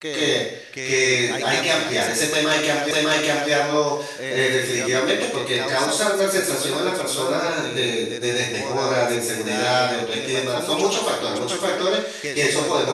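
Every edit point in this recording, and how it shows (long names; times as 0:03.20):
0:02.91: the same again, the last 0.6 s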